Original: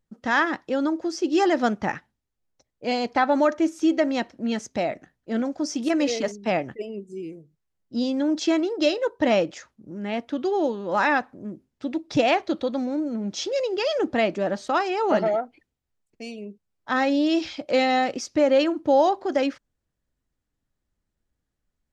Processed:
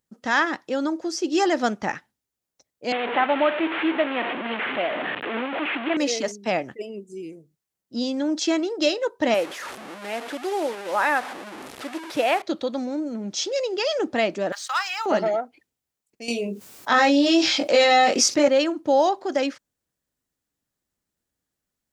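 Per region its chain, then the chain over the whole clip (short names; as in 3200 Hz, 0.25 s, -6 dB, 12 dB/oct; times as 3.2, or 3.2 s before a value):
2.92–5.97 delta modulation 16 kbps, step -20.5 dBFS + HPF 290 Hz
9.34–12.42 delta modulation 64 kbps, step -27 dBFS + tone controls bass -14 dB, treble -14 dB
14.52–15.06 HPF 1100 Hz 24 dB/oct + sample leveller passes 1
16.28–18.48 HPF 170 Hz 6 dB/oct + doubler 21 ms -2 dB + fast leveller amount 50%
whole clip: HPF 190 Hz 6 dB/oct; high shelf 5500 Hz +9.5 dB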